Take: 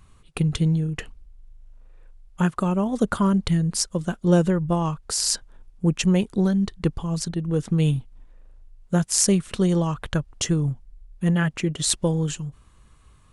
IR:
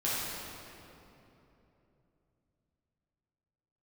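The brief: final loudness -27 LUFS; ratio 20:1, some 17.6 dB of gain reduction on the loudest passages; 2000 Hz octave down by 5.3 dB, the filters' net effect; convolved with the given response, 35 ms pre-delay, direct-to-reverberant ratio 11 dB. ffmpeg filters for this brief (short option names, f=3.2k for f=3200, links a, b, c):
-filter_complex "[0:a]equalizer=f=2k:t=o:g=-7.5,acompressor=threshold=-32dB:ratio=20,asplit=2[a][b];[1:a]atrim=start_sample=2205,adelay=35[c];[b][c]afir=irnorm=-1:irlink=0,volume=-19.5dB[d];[a][d]amix=inputs=2:normalize=0,volume=10dB"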